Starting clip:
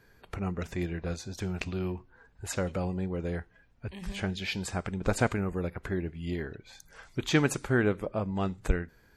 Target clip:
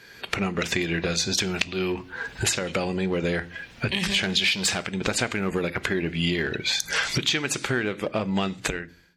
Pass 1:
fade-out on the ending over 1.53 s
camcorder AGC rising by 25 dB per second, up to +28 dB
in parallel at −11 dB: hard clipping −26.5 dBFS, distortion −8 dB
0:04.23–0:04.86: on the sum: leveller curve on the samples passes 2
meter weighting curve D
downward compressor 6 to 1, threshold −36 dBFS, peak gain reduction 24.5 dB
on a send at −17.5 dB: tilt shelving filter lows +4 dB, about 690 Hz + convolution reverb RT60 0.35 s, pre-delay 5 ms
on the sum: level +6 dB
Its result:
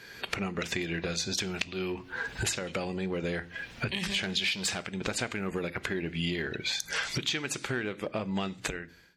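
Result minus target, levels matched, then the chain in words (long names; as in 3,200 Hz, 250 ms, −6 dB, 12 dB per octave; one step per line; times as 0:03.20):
downward compressor: peak gain reduction +7.5 dB; hard clipping: distortion −4 dB
fade-out on the ending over 1.53 s
camcorder AGC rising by 25 dB per second, up to +28 dB
in parallel at −11 dB: hard clipping −34 dBFS, distortion −4 dB
0:04.23–0:04.86: on the sum: leveller curve on the samples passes 2
meter weighting curve D
downward compressor 6 to 1, threshold −27.5 dBFS, peak gain reduction 17 dB
on a send at −17.5 dB: tilt shelving filter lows +4 dB, about 690 Hz + convolution reverb RT60 0.35 s, pre-delay 5 ms
on the sum: level +6 dB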